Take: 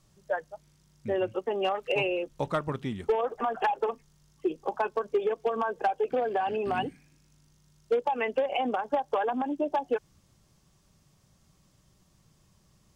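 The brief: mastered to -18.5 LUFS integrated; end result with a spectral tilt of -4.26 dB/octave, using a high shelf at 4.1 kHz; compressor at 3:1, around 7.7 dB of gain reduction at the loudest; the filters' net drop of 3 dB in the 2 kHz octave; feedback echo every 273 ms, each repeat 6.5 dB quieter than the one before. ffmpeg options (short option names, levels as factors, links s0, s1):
-af "equalizer=f=2000:t=o:g=-7,highshelf=f=4100:g=9,acompressor=threshold=0.0224:ratio=3,aecho=1:1:273|546|819|1092|1365|1638:0.473|0.222|0.105|0.0491|0.0231|0.0109,volume=7.5"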